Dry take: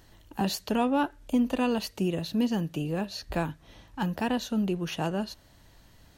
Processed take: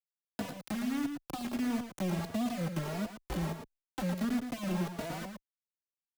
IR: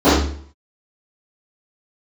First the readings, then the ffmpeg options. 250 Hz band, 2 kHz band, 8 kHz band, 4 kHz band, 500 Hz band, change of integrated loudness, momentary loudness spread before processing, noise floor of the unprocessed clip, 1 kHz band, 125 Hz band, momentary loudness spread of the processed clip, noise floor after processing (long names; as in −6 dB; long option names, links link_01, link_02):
−6.0 dB, −6.0 dB, −4.5 dB, −9.0 dB, −9.0 dB, −6.5 dB, 9 LU, −57 dBFS, −9.0 dB, −3.5 dB, 9 LU, below −85 dBFS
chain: -filter_complex "[0:a]anlmdn=0.01,acrossover=split=260[link_01][link_02];[link_01]aeval=exprs='0.075*sin(PI/2*1.78*val(0)/0.075)':channel_layout=same[link_03];[link_02]acompressor=threshold=-41dB:ratio=6[link_04];[link_03][link_04]amix=inputs=2:normalize=0,acrusher=bits=4:mix=0:aa=0.000001,acrossover=split=270|890[link_05][link_06][link_07];[link_05]acompressor=threshold=-39dB:ratio=4[link_08];[link_06]acompressor=threshold=-36dB:ratio=4[link_09];[link_07]acompressor=threshold=-43dB:ratio=4[link_10];[link_08][link_09][link_10]amix=inputs=3:normalize=0,aecho=1:1:112:0.422,asplit=2[link_11][link_12];[link_12]adelay=3.4,afreqshift=1.5[link_13];[link_11][link_13]amix=inputs=2:normalize=1,volume=2dB"